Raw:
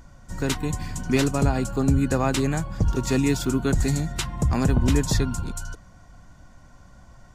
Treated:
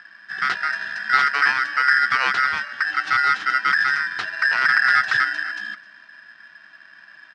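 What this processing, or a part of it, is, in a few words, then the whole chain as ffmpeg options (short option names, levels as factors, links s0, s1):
ring modulator pedal into a guitar cabinet: -filter_complex "[0:a]asettb=1/sr,asplit=3[s0][s1][s2];[s0]atrim=end=2.474[s3];[s1]atrim=start=2.47:end=3.7,asetpts=PTS-STARTPTS,afade=t=in:d=0.004:c=qsin,afade=t=out:st=1.226:d=0.004:c=qsin,highpass=f=98:p=1[s4];[s2]atrim=start=3.696[s5];[s3][s4]acrossfade=d=0.004:c1=hsin:c2=qsin[s6];[s6][s5]acrossfade=d=0.004:c1=qsin:c2=hsin,aeval=exprs='val(0)*sgn(sin(2*PI*1700*n/s))':c=same,highpass=110,equalizer=f=180:t=q:w=4:g=-4,equalizer=f=270:t=q:w=4:g=-8,equalizer=f=550:t=q:w=4:g=-7,equalizer=f=1300:t=q:w=4:g=9,lowpass=f=4300:w=0.5412,lowpass=f=4300:w=1.3066,highshelf=f=8600:g=5,aecho=1:1:261:0.0841"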